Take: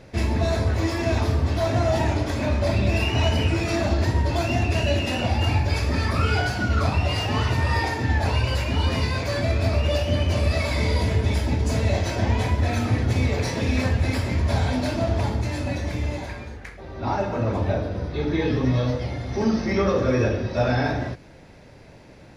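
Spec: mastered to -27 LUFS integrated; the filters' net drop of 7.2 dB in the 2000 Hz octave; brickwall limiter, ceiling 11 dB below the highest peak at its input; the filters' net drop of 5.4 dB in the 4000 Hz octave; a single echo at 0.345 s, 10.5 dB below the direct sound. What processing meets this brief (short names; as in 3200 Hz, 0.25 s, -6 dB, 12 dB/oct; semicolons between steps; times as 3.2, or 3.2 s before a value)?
bell 2000 Hz -8.5 dB; bell 4000 Hz -4 dB; limiter -21 dBFS; echo 0.345 s -10.5 dB; gain +2 dB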